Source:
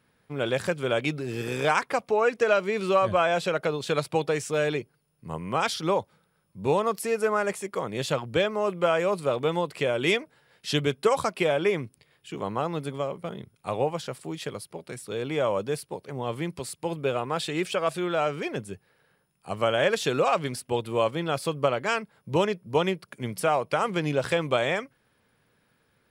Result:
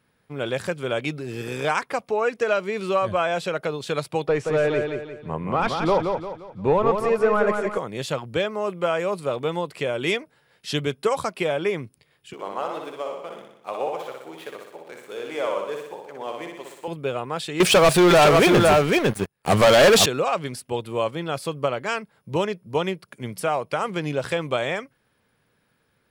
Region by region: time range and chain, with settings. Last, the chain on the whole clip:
4.27–7.78 s: overdrive pedal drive 13 dB, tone 2.2 kHz, clips at -11 dBFS + tilt EQ -2.5 dB/octave + feedback delay 175 ms, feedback 39%, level -5 dB
12.33–16.88 s: median filter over 9 samples + high-pass 430 Hz + feedback delay 61 ms, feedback 59%, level -4 dB
17.60–20.06 s: delay 505 ms -5.5 dB + waveshaping leveller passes 5
whole clip: none

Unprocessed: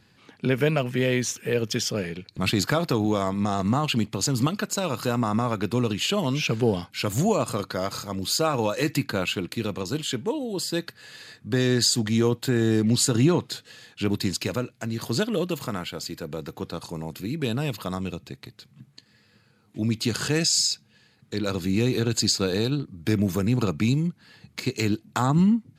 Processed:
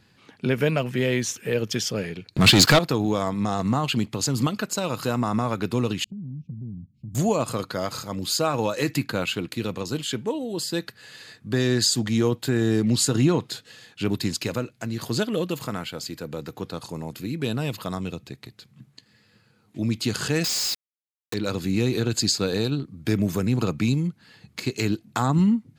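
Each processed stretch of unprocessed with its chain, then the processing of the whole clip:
2.34–2.79 s: waveshaping leveller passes 3 + dynamic bell 4.1 kHz, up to +5 dB, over -30 dBFS, Q 0.77
6.04–7.15 s: inverse Chebyshev low-pass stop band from 560 Hz, stop band 50 dB + compression 2.5:1, threshold -35 dBFS
20.44–21.34 s: Bessel low-pass 8.1 kHz, order 4 + tone controls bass -8 dB, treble -3 dB + companded quantiser 2-bit
whole clip: none

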